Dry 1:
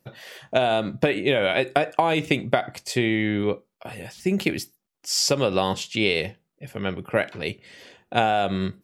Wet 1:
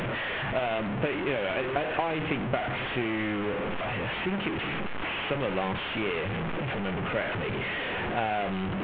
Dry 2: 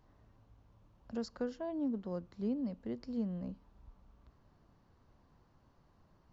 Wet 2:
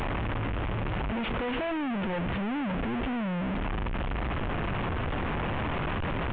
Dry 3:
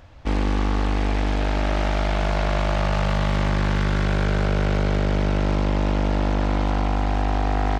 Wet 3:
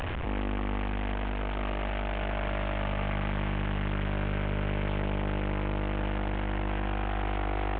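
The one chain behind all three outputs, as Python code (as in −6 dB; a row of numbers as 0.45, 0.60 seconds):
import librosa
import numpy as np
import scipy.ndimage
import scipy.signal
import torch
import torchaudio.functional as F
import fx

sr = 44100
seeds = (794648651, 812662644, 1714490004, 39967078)

y = fx.delta_mod(x, sr, bps=16000, step_db=-16.5)
y = y * 10.0 ** (-30 / 20.0) / np.sqrt(np.mean(np.square(y)))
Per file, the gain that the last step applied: −8.0, −7.5, −10.0 decibels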